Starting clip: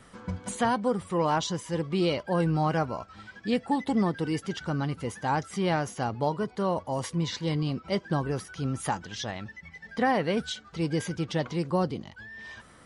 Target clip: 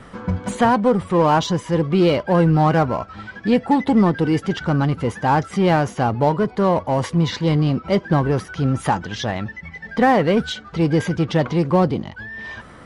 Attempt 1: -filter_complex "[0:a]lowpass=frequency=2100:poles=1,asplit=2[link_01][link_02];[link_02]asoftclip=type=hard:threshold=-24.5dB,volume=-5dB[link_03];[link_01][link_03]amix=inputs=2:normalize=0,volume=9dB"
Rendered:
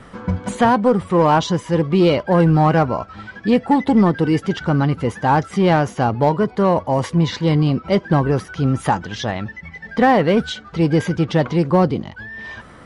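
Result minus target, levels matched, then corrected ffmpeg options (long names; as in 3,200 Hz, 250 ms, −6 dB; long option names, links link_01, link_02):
hard clipping: distortion −7 dB
-filter_complex "[0:a]lowpass=frequency=2100:poles=1,asplit=2[link_01][link_02];[link_02]asoftclip=type=hard:threshold=-32.5dB,volume=-5dB[link_03];[link_01][link_03]amix=inputs=2:normalize=0,volume=9dB"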